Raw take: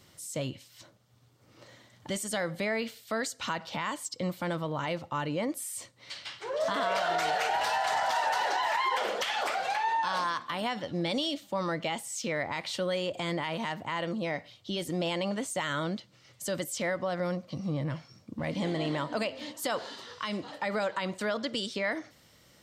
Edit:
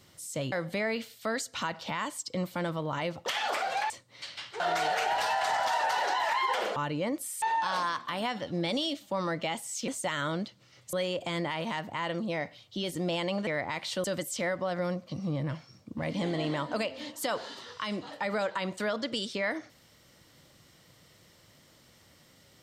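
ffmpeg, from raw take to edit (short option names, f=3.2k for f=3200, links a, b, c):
-filter_complex "[0:a]asplit=11[a][b][c][d][e][f][g][h][i][j][k];[a]atrim=end=0.522[l];[b]atrim=start=2.378:end=5.122[m];[c]atrim=start=9.188:end=9.832[n];[d]atrim=start=5.778:end=6.482[o];[e]atrim=start=7.028:end=9.192[p];[f]atrim=start=5.118:end=5.782[q];[g]atrim=start=9.828:end=12.292[r];[h]atrim=start=15.398:end=16.452[s];[i]atrim=start=12.858:end=15.402[t];[j]atrim=start=12.288:end=12.862[u];[k]atrim=start=16.448[v];[l][m]acrossfade=d=0.004:c1=hsin:c2=hsin[w];[w][n]acrossfade=d=0.004:c1=hsin:c2=hsin[x];[x][o]acrossfade=d=0.004:c1=hsin:c2=hsin[y];[y][p]acrossfade=d=0.004:c1=hsin:c2=hsin[z];[z][q]acrossfade=d=0.004:c1=hsin:c2=hsin[aa];[aa][r]acrossfade=d=0.004:c1=hsin:c2=hsin[ab];[ab][s]acrossfade=d=0.004:c1=hsin:c2=hsin[ac];[ac][t]acrossfade=d=0.004:c1=hsin:c2=hsin[ad];[ad][u]acrossfade=d=0.004:c1=hsin:c2=hsin[ae];[ae][v]acrossfade=d=0.004:c1=hsin:c2=hsin"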